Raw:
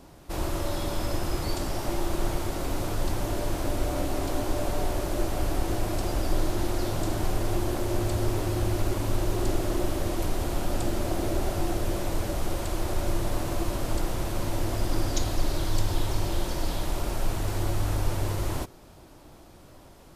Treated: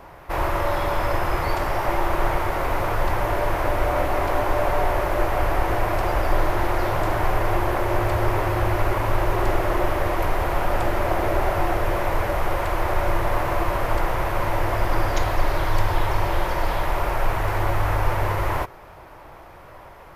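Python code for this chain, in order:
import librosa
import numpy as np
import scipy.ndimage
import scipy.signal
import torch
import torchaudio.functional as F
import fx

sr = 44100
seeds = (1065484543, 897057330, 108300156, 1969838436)

y = fx.graphic_eq(x, sr, hz=(250, 500, 1000, 2000, 4000, 8000), db=(-9, 4, 8, 9, -5, -11))
y = y * 10.0 ** (4.5 / 20.0)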